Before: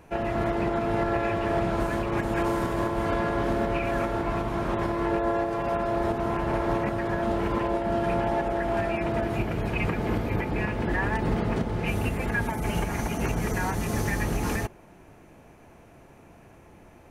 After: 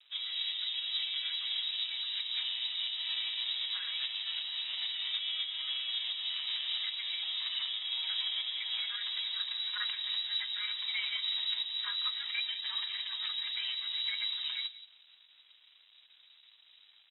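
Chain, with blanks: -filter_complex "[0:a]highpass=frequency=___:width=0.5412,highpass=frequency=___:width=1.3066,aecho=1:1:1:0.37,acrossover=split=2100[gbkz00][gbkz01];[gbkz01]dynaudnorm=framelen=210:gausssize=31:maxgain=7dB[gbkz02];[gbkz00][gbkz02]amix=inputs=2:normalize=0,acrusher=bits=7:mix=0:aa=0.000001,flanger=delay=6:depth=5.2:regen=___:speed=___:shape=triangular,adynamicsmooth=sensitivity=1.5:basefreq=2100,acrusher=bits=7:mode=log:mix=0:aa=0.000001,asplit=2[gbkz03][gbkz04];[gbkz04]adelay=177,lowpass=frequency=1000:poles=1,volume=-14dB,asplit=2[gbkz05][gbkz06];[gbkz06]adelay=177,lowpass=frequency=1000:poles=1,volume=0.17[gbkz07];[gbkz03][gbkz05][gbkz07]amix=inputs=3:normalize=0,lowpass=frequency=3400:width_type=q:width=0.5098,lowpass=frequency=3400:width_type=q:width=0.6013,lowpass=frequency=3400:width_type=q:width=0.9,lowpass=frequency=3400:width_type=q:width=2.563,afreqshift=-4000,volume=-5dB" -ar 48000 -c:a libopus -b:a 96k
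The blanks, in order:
88, 88, 46, 1.8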